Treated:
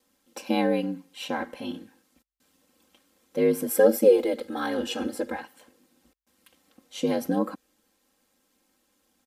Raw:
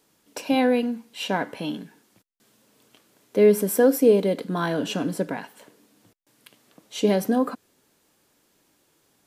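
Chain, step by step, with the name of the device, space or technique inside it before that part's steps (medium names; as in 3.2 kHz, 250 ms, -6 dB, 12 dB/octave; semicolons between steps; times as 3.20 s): 3.70–5.41 s: comb 2.4 ms, depth 99%; ring-modulated robot voice (ring modulator 50 Hz; comb 3.8 ms, depth 91%); trim -4.5 dB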